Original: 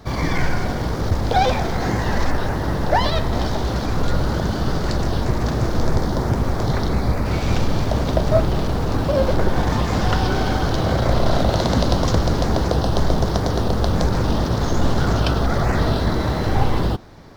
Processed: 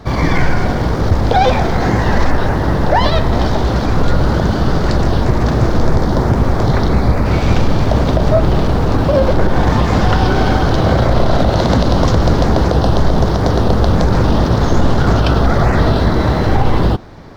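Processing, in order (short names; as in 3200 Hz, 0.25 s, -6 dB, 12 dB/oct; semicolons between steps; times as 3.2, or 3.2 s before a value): high shelf 5200 Hz -9 dB; limiter -9.5 dBFS, peak gain reduction 6 dB; gain +7.5 dB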